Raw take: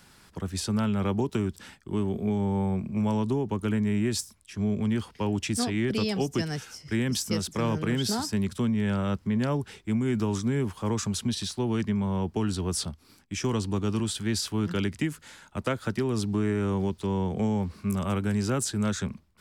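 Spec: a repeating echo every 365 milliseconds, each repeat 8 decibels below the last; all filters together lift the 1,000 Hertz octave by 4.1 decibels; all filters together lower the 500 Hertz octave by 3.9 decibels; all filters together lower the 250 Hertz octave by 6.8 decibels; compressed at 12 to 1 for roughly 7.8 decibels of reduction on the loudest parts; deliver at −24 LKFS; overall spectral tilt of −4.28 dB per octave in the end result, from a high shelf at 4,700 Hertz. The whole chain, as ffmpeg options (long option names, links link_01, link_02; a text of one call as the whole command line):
ffmpeg -i in.wav -af "equalizer=frequency=250:width_type=o:gain=-8.5,equalizer=frequency=500:width_type=o:gain=-3,equalizer=frequency=1000:width_type=o:gain=6,highshelf=frequency=4700:gain=4.5,acompressor=threshold=-31dB:ratio=12,aecho=1:1:365|730|1095|1460|1825:0.398|0.159|0.0637|0.0255|0.0102,volume=11dB" out.wav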